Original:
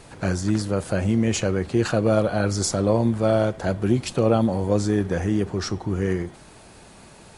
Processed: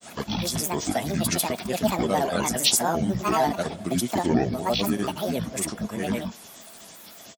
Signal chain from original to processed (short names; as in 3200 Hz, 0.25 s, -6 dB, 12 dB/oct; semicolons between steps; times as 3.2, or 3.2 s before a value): RIAA curve recording; grains, grains 27/s, pitch spread up and down by 12 st; small resonant body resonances 210/660/3400 Hz, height 10 dB, ringing for 45 ms